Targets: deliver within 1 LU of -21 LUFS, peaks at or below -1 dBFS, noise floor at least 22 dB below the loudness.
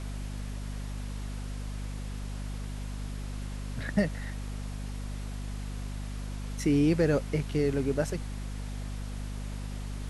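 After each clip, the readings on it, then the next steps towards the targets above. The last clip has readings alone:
hum 50 Hz; highest harmonic 250 Hz; hum level -34 dBFS; noise floor -37 dBFS; noise floor target -56 dBFS; loudness -33.5 LUFS; peak level -13.0 dBFS; loudness target -21.0 LUFS
-> hum notches 50/100/150/200/250 Hz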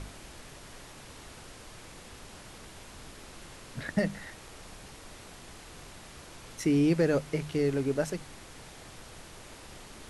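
hum not found; noise floor -49 dBFS; noise floor target -52 dBFS
-> noise print and reduce 6 dB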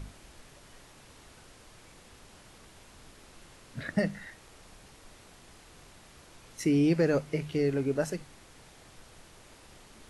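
noise floor -55 dBFS; loudness -29.5 LUFS; peak level -14.0 dBFS; loudness target -21.0 LUFS
-> trim +8.5 dB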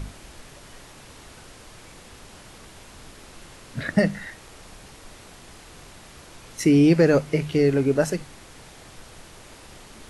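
loudness -21.0 LUFS; peak level -5.5 dBFS; noise floor -47 dBFS

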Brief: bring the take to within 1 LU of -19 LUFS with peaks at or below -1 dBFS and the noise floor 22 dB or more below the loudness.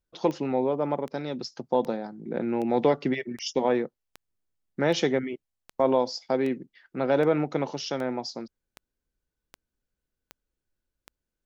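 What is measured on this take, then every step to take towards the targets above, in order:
clicks found 15; loudness -27.5 LUFS; peak level -10.5 dBFS; loudness target -19.0 LUFS
-> de-click; trim +8.5 dB

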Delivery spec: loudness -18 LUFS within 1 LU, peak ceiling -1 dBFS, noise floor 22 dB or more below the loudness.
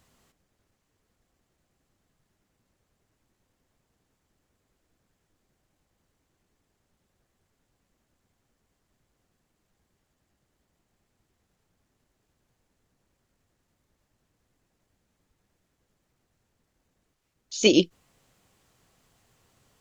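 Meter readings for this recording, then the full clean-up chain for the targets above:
loudness -23.0 LUFS; peak level -4.5 dBFS; loudness target -18.0 LUFS
-> trim +5 dB; peak limiter -1 dBFS

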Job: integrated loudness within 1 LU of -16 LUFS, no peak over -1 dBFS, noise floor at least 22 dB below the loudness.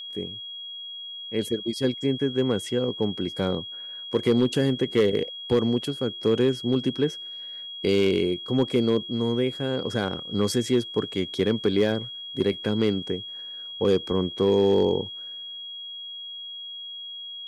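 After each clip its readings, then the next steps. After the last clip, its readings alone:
clipped samples 0.4%; clipping level -13.0 dBFS; steady tone 3.3 kHz; tone level -35 dBFS; loudness -26.0 LUFS; peak level -13.0 dBFS; loudness target -16.0 LUFS
-> clip repair -13 dBFS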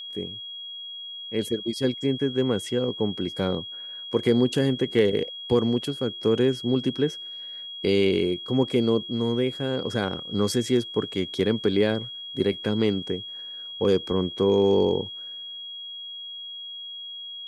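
clipped samples 0.0%; steady tone 3.3 kHz; tone level -35 dBFS
-> band-stop 3.3 kHz, Q 30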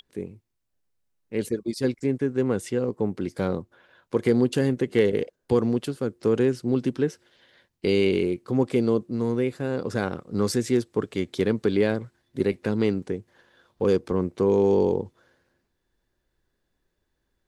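steady tone not found; loudness -25.0 LUFS; peak level -7.5 dBFS; loudness target -16.0 LUFS
-> trim +9 dB; peak limiter -1 dBFS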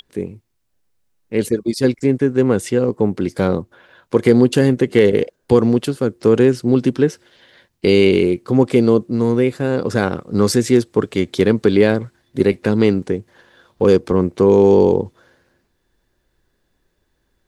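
loudness -16.5 LUFS; peak level -1.0 dBFS; noise floor -68 dBFS

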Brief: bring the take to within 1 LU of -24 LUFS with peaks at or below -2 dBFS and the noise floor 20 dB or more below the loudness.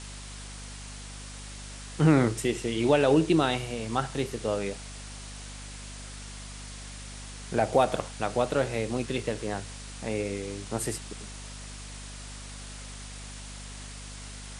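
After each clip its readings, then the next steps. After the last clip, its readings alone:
hum 50 Hz; highest harmonic 250 Hz; hum level -41 dBFS; noise floor -42 dBFS; noise floor target -48 dBFS; loudness -27.5 LUFS; peak level -8.5 dBFS; loudness target -24.0 LUFS
-> hum notches 50/100/150/200/250 Hz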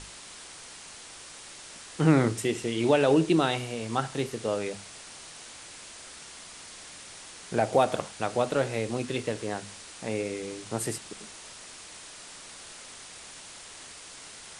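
hum not found; noise floor -46 dBFS; noise floor target -48 dBFS
-> noise reduction 6 dB, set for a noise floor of -46 dBFS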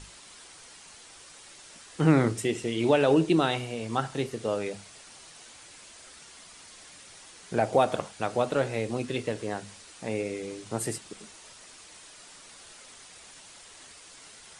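noise floor -50 dBFS; loudness -28.0 LUFS; peak level -8.0 dBFS; loudness target -24.0 LUFS
-> trim +4 dB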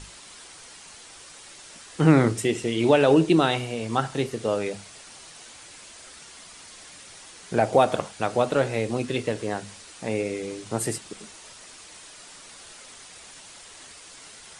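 loudness -24.0 LUFS; peak level -4.0 dBFS; noise floor -46 dBFS

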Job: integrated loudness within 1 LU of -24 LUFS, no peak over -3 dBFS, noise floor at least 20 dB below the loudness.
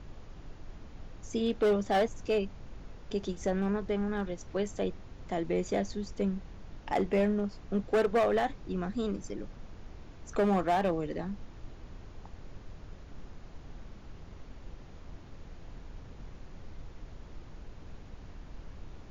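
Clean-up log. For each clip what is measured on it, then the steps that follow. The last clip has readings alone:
clipped samples 1.0%; clipping level -21.5 dBFS; noise floor -50 dBFS; noise floor target -52 dBFS; loudness -31.5 LUFS; peak level -21.5 dBFS; loudness target -24.0 LUFS
-> clip repair -21.5 dBFS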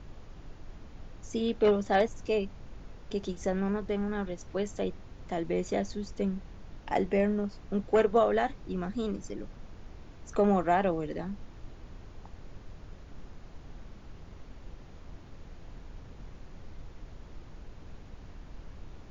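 clipped samples 0.0%; noise floor -50 dBFS; noise floor target -51 dBFS
-> noise print and reduce 6 dB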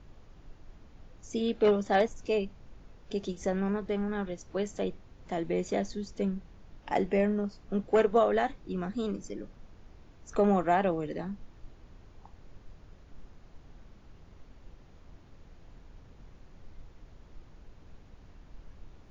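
noise floor -55 dBFS; loudness -30.5 LUFS; peak level -13.0 dBFS; loudness target -24.0 LUFS
-> trim +6.5 dB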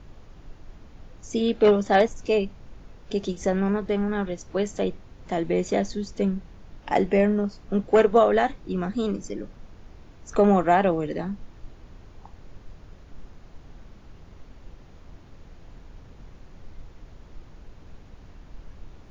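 loudness -24.0 LUFS; peak level -6.5 dBFS; noise floor -49 dBFS

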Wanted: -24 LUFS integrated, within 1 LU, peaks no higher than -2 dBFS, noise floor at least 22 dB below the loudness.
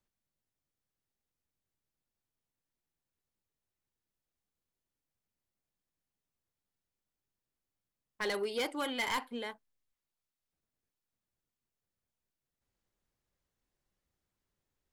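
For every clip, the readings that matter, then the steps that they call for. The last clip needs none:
clipped samples 0.2%; clipping level -28.5 dBFS; loudness -35.5 LUFS; peak level -28.5 dBFS; loudness target -24.0 LUFS
-> clip repair -28.5 dBFS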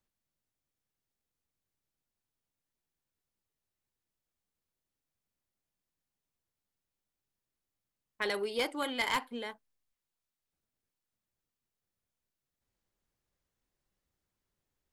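clipped samples 0.0%; loudness -34.0 LUFS; peak level -19.5 dBFS; loudness target -24.0 LUFS
-> trim +10 dB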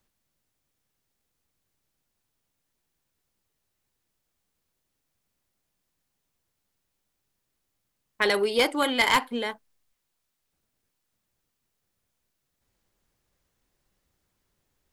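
loudness -24.0 LUFS; peak level -9.5 dBFS; noise floor -80 dBFS

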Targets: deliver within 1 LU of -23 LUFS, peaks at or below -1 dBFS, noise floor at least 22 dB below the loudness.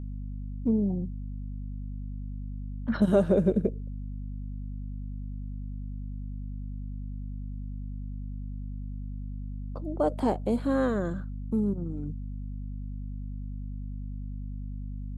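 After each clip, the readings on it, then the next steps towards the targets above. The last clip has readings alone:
hum 50 Hz; highest harmonic 250 Hz; hum level -33 dBFS; loudness -32.5 LUFS; peak level -10.0 dBFS; loudness target -23.0 LUFS
-> hum notches 50/100/150/200/250 Hz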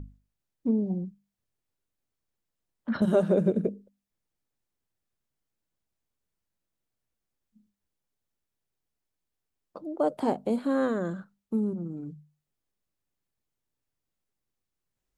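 hum not found; loudness -28.5 LUFS; peak level -12.0 dBFS; loudness target -23.0 LUFS
-> trim +5.5 dB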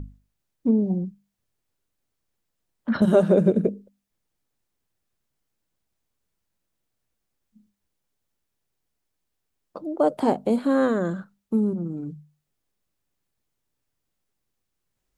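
loudness -23.0 LUFS; peak level -6.5 dBFS; noise floor -80 dBFS

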